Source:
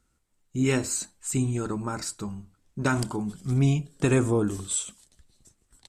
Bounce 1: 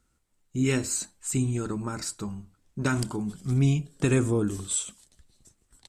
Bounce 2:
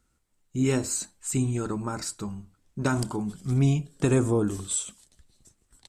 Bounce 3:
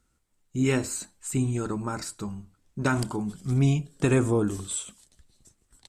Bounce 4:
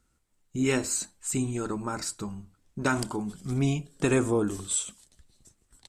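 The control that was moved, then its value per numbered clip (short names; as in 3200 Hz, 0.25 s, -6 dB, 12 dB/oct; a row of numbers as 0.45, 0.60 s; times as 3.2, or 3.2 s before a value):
dynamic EQ, frequency: 800, 2200, 5800, 120 Hz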